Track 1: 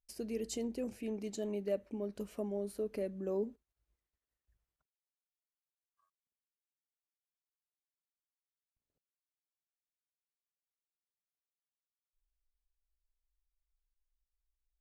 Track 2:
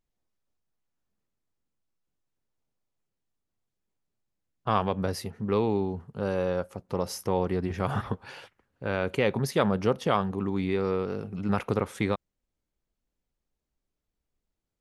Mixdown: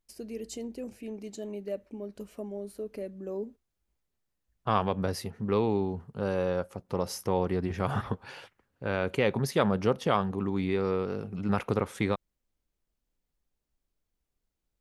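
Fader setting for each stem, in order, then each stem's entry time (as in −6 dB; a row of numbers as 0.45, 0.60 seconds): 0.0, −1.0 decibels; 0.00, 0.00 seconds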